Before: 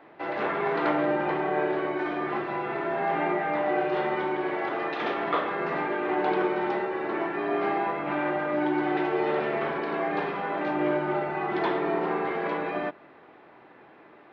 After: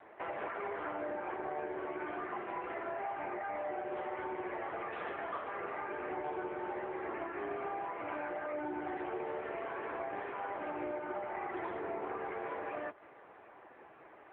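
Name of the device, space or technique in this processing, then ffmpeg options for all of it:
voicemail: -af "highpass=370,lowpass=2600,acompressor=threshold=0.0178:ratio=6" -ar 8000 -c:a libopencore_amrnb -b:a 6700

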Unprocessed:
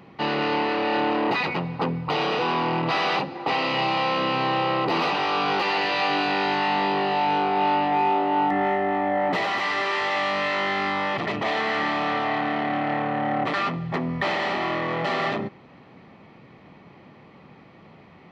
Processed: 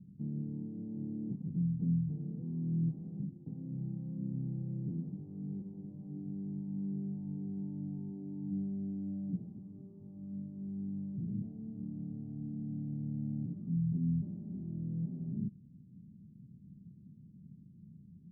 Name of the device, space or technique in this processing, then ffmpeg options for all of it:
the neighbour's flat through the wall: -af "lowpass=f=190:w=0.5412,lowpass=f=190:w=1.3066,equalizer=f=200:t=o:w=0.77:g=5,volume=0.708"

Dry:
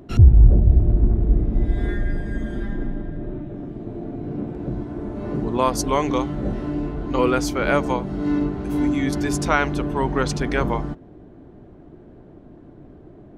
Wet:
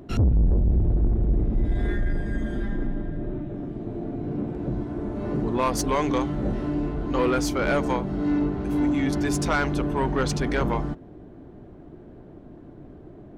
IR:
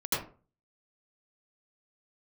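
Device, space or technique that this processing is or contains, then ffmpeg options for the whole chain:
saturation between pre-emphasis and de-emphasis: -filter_complex "[0:a]asettb=1/sr,asplit=3[s0][s1][s2];[s0]atrim=end=8.014[s3];[s1]atrim=start=8.01:end=9.25,asetpts=PTS-STARTPTS,afade=t=in:d=0.004:c=qsin,afade=t=out:st=1.236:d=0.004:c=qsin,highshelf=f=5500:g=-5[s4];[s2]atrim=start=9.246[s5];[s3][s4]acrossfade=d=0.004:c1=hsin:c2=qsin[s6];[s6][s5]acrossfade=d=0.004:c1=qsin:c2=hsin,highshelf=f=7000:g=9,asoftclip=type=tanh:threshold=0.158,highshelf=f=7000:g=-9"

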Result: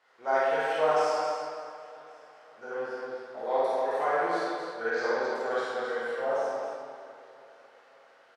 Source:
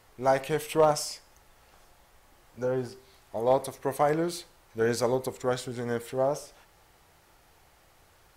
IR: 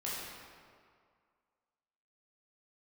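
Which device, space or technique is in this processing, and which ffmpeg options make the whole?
station announcement: -filter_complex "[0:a]highpass=470,lowpass=4400,equalizer=f=1500:t=o:w=0.44:g=7.5,aecho=1:1:52.48|265.3:0.794|0.501[s0];[1:a]atrim=start_sample=2205[s1];[s0][s1]afir=irnorm=-1:irlink=0,asplit=3[s2][s3][s4];[s2]afade=t=out:st=4.9:d=0.02[s5];[s3]lowpass=f=6400:w=0.5412,lowpass=f=6400:w=1.3066,afade=t=in:st=4.9:d=0.02,afade=t=out:st=5.34:d=0.02[s6];[s4]afade=t=in:st=5.34:d=0.02[s7];[s5][s6][s7]amix=inputs=3:normalize=0,aecho=1:1:550|1100|1650|2200:0.0841|0.048|0.0273|0.0156,volume=0.562"

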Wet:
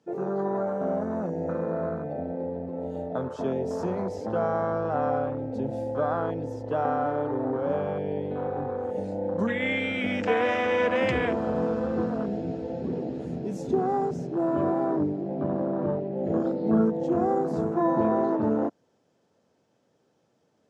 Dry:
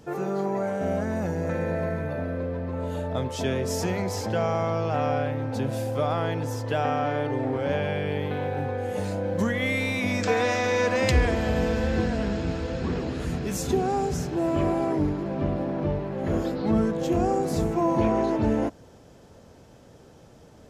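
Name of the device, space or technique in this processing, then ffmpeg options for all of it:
over-cleaned archive recording: -filter_complex "[0:a]highpass=f=66:w=0.5412,highpass=f=66:w=1.3066,highpass=170,lowpass=7400,afwtdn=0.0355,highshelf=f=11000:g=5,asettb=1/sr,asplit=3[s0][s1][s2];[s0]atrim=end=15.454[s3];[s1]atrim=start=15.45:end=16.9,asetpts=PTS-STARTPTS,afade=t=in:d=0.004:c=qsin,afade=t=out:st=1.446:d=0.004:c=qsin,asplit=2[s4][s5];[s5]adelay=36,volume=0.447[s6];[s4][s6]amix=inputs=2:normalize=0,atrim=end_sample=63945[s7];[s2]atrim=start=16.896[s8];[s3][s7]acrossfade=d=0.004:c1=hsin:c2=qsin[s9];[s9][s8]acrossfade=d=0.004:c1=qsin:c2=hsin"

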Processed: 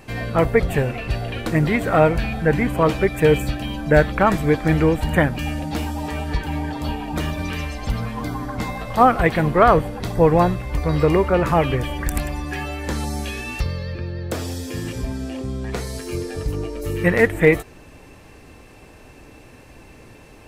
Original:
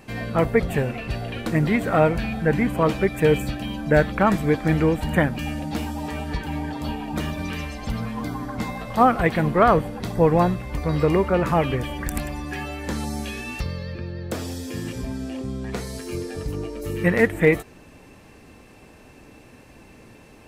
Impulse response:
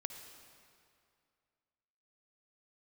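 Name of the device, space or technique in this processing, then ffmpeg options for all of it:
low shelf boost with a cut just above: -af "lowshelf=f=61:g=5.5,equalizer=f=210:t=o:w=0.55:g=-5,volume=1.41"

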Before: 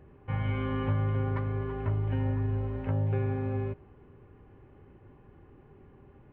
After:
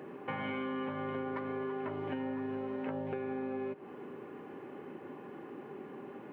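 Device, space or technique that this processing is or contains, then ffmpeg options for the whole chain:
serial compression, peaks first: -af "highpass=f=210:w=0.5412,highpass=f=210:w=1.3066,acompressor=threshold=0.00708:ratio=6,acompressor=threshold=0.002:ratio=1.5,volume=4.22"

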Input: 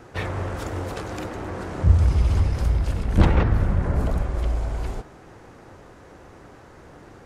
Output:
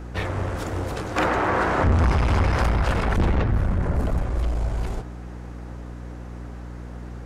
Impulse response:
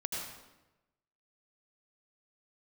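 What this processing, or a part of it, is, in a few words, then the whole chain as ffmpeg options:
valve amplifier with mains hum: -filter_complex "[0:a]aeval=exprs='(tanh(8.91*val(0)+0.3)-tanh(0.3))/8.91':c=same,aeval=exprs='val(0)+0.0141*(sin(2*PI*60*n/s)+sin(2*PI*2*60*n/s)/2+sin(2*PI*3*60*n/s)/3+sin(2*PI*4*60*n/s)/4+sin(2*PI*5*60*n/s)/5)':c=same,asettb=1/sr,asplit=3[s0][s1][s2];[s0]atrim=end=1.164[s3];[s1]atrim=start=1.16:end=3.16,asetpts=PTS-STARTPTS,afade=t=in:d=0.004:c=qsin,afade=t=out:st=1.996:d=0.004:c=qsin,equalizer=f=1300:w=0.35:g=14.5[s4];[s2]atrim=start=3.156[s5];[s3][s4]acrossfade=d=0.004:c1=hsin:c2=qsin[s6];[s6][s5]acrossfade=d=0.004:c1=qsin:c2=hsin,volume=1.33"

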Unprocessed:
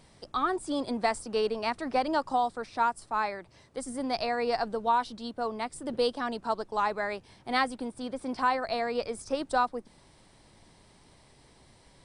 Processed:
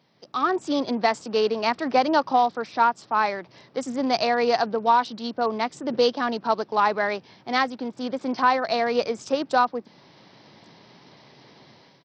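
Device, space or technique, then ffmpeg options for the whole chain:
Bluetooth headset: -af "highpass=f=130:w=0.5412,highpass=f=130:w=1.3066,dynaudnorm=f=150:g=5:m=5.31,aresample=16000,aresample=44100,volume=0.531" -ar 44100 -c:a sbc -b:a 64k

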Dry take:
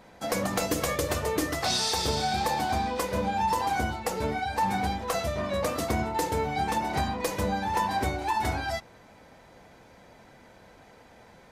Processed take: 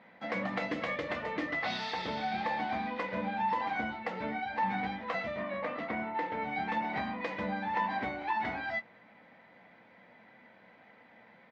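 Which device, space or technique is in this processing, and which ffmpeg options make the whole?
kitchen radio: -filter_complex "[0:a]asettb=1/sr,asplit=3[s0][s1][s2];[s0]atrim=end=5.434[s3];[s1]atrim=start=5.43:end=6.42,asetpts=PTS-STARTPTS,afade=t=in:d=0.004:c=qsin,afade=t=out:st=0.986:d=0.004:c=qsin,bass=f=250:g=-5,treble=f=4000:g=-11[s4];[s2]atrim=start=6.416[s5];[s3][s4]acrossfade=d=0.004:c1=hsin:c2=qsin[s6];[s6][s5]acrossfade=d=0.004:c1=qsin:c2=hsin,highpass=190,equalizer=f=210:t=q:w=4:g=6,equalizer=f=390:t=q:w=4:g=-7,equalizer=f=2000:t=q:w=4:g=9,lowpass=f=3500:w=0.5412,lowpass=f=3500:w=1.3066,asplit=2[s7][s8];[s8]adelay=17,volume=0.282[s9];[s7][s9]amix=inputs=2:normalize=0,volume=0.501"

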